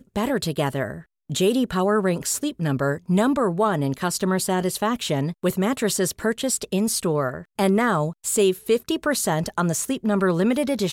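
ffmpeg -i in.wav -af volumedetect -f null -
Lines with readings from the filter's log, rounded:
mean_volume: -22.6 dB
max_volume: -9.1 dB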